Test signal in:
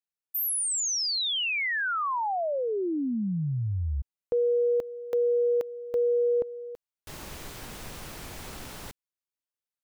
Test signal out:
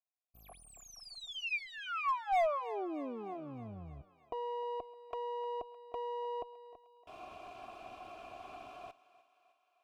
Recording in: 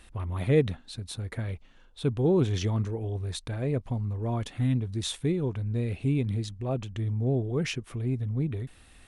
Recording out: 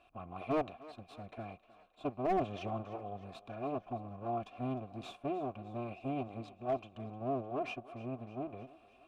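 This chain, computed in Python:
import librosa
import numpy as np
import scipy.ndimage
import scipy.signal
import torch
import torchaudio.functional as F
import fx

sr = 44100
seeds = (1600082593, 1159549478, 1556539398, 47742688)

y = fx.lower_of_two(x, sr, delay_ms=2.9)
y = fx.vowel_filter(y, sr, vowel='a')
y = fx.peak_eq(y, sr, hz=70.0, db=-5.0, octaves=2.1)
y = np.clip(10.0 ** (33.0 / 20.0) * y, -1.0, 1.0) / 10.0 ** (33.0 / 20.0)
y = fx.bass_treble(y, sr, bass_db=14, treble_db=-3)
y = fx.echo_thinned(y, sr, ms=306, feedback_pct=63, hz=390.0, wet_db=-17.0)
y = y * 10.0 ** (6.0 / 20.0)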